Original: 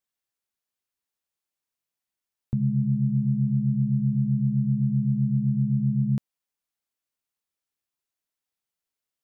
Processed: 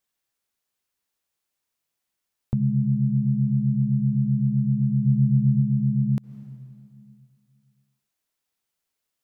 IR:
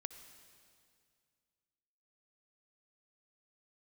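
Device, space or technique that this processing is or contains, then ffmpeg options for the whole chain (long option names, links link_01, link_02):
ducked reverb: -filter_complex "[0:a]asplit=3[link_01][link_02][link_03];[1:a]atrim=start_sample=2205[link_04];[link_02][link_04]afir=irnorm=-1:irlink=0[link_05];[link_03]apad=whole_len=407441[link_06];[link_05][link_06]sidechaincompress=threshold=-37dB:ratio=8:attack=40:release=174,volume=4dB[link_07];[link_01][link_07]amix=inputs=2:normalize=0,asplit=3[link_08][link_09][link_10];[link_08]afade=type=out:start_time=5.05:duration=0.02[link_11];[link_09]equalizer=frequency=85:width_type=o:width=1.1:gain=8.5,afade=type=in:start_time=5.05:duration=0.02,afade=type=out:start_time=5.6:duration=0.02[link_12];[link_10]afade=type=in:start_time=5.6:duration=0.02[link_13];[link_11][link_12][link_13]amix=inputs=3:normalize=0"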